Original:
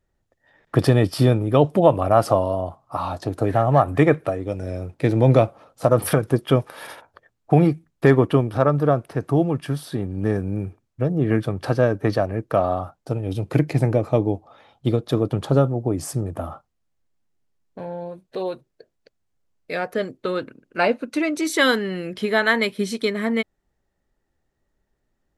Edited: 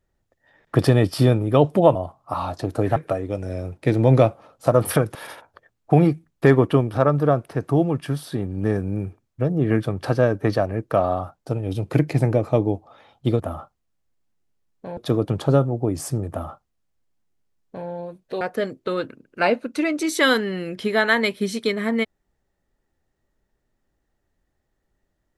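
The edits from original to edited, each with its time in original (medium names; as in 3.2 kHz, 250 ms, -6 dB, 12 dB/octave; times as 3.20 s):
1.95–2.58 s: delete
3.59–4.13 s: delete
6.32–6.75 s: delete
16.33–17.90 s: copy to 15.00 s
18.44–19.79 s: delete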